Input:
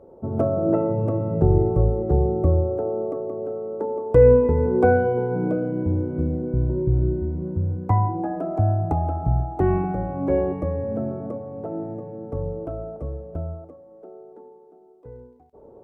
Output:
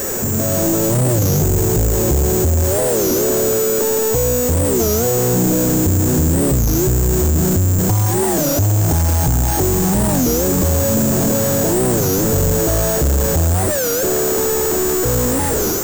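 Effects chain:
converter with a step at zero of −24 dBFS
downward compressor 6 to 1, threshold −23 dBFS, peak gain reduction 14 dB
parametric band 1,700 Hz +11 dB 0.28 octaves
automatic gain control gain up to 12 dB
bad sample-rate conversion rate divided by 6×, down filtered, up zero stuff
low-shelf EQ 440 Hz +8.5 dB
soft clipping −11.5 dBFS, distortion −2 dB
wow of a warped record 33 1/3 rpm, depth 250 cents

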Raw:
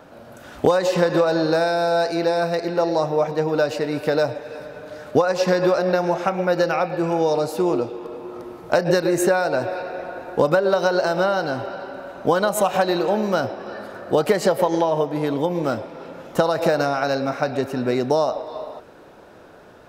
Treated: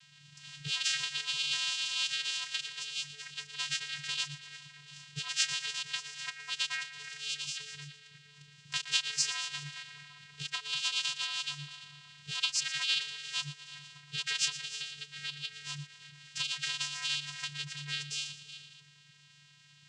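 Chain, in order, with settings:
inverse Chebyshev band-stop filter 160–1,000 Hz, stop band 60 dB
reverb reduction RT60 0.52 s
echo with a time of its own for lows and highs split 860 Hz, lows 339 ms, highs 117 ms, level −13.5 dB
channel vocoder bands 8, square 145 Hz
treble cut that deepens with the level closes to 2,800 Hz, closed at −14.5 dBFS
level +5 dB

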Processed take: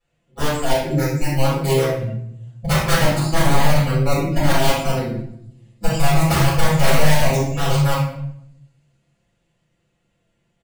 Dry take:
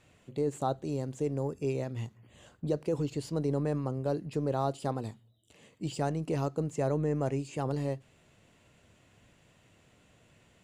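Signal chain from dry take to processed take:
comb filter 5.8 ms, depth 46%
on a send: delay with a high-pass on its return 129 ms, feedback 85%, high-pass 4,600 Hz, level −10 dB
on the sum: wrap-around overflow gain 24 dB
noise reduction from a noise print of the clip's start 22 dB
rectangular room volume 180 cubic metres, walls mixed, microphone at 5.9 metres
level −2 dB

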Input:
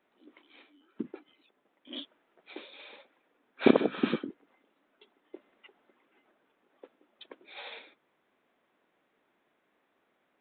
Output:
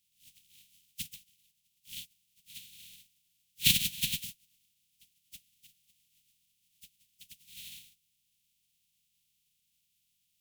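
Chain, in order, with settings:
compressing power law on the bin magnitudes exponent 0.15
elliptic band-stop filter 180–2,800 Hz, stop band 50 dB
harmonic generator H 8 −42 dB, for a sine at −6 dBFS

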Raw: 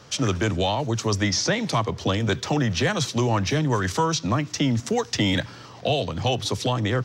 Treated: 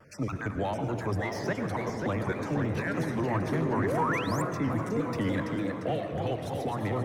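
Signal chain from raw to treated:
time-frequency cells dropped at random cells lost 25%
echo through a band-pass that steps 357 ms, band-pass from 320 Hz, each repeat 0.7 octaves, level −6 dB
on a send at −7 dB: convolution reverb RT60 2.0 s, pre-delay 60 ms
on the sum: delay with pitch and tempo change per echo 620 ms, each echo +1 semitone, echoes 3, each echo −6 dB
sound drawn into the spectrogram rise, 0:03.76–0:04.42, 220–8,600 Hz −24 dBFS
soft clipping −13 dBFS, distortion −20 dB
flat-topped bell 4,700 Hz −14.5 dB
mains-hum notches 60/120 Hz
pitch modulation by a square or saw wave saw down 3.4 Hz, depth 100 cents
level −6 dB

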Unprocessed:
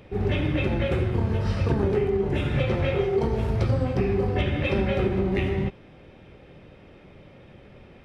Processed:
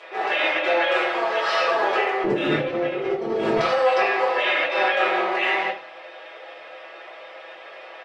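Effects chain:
high-pass filter 640 Hz 24 dB per octave, from 0:02.24 250 Hz, from 0:03.57 640 Hz
comb filter 6.1 ms, depth 73%
compressor whose output falls as the input rises −34 dBFS, ratio −1
high-frequency loss of the air 91 metres
convolution reverb RT60 0.35 s, pre-delay 3 ms, DRR −6 dB
level +6 dB

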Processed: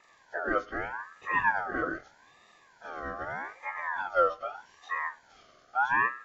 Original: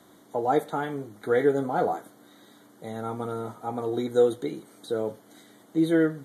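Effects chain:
partials spread apart or drawn together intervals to 80%
dynamic equaliser 4,700 Hz, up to −5 dB, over −54 dBFS, Q 0.87
ring modulator whose carrier an LFO sweeps 1,200 Hz, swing 25%, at 0.81 Hz
level −1 dB

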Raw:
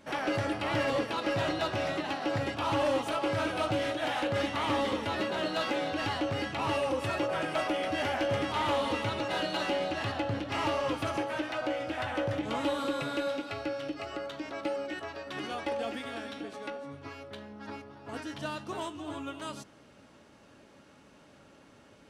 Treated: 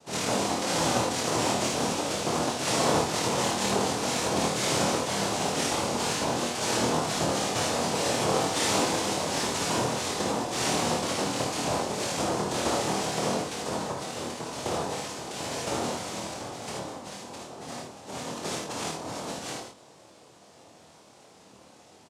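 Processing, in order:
cochlear-implant simulation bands 2
double-tracking delay 25 ms −3.5 dB
ambience of single reflections 55 ms −4 dB, 76 ms −5.5 dB

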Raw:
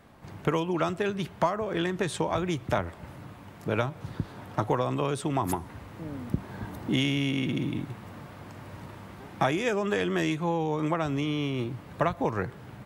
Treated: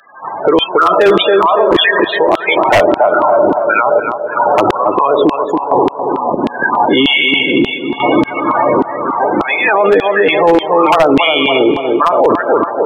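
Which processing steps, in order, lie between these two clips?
four-comb reverb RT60 3.5 s, combs from 29 ms, DRR 8.5 dB
downsampling to 16,000 Hz
0:07.90–0:09.09: double-tracking delay 15 ms −7.5 dB
in parallel at +2 dB: downward compressor 12 to 1, threshold −36 dBFS, peak gain reduction 17 dB
on the sum: spectral peaks only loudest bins 32
auto-filter high-pass saw down 1.7 Hz 310–3,300 Hz
sample-and-hold tremolo 3.5 Hz, depth 90%
on a send: tape delay 280 ms, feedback 53%, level −9.5 dB, low-pass 1,200 Hz
on the sum: wave folding −19 dBFS
boost into a limiter +30.5 dB
level −1 dB

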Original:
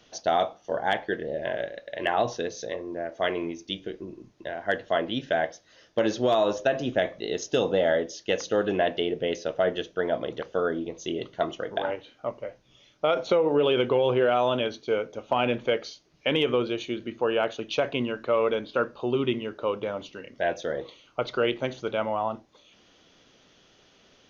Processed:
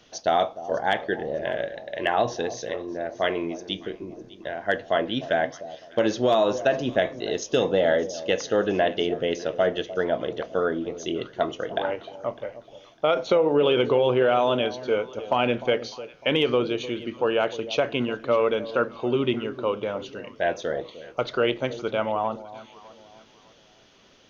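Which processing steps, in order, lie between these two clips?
delay that swaps between a low-pass and a high-pass 302 ms, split 870 Hz, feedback 55%, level −14 dB
level +2 dB

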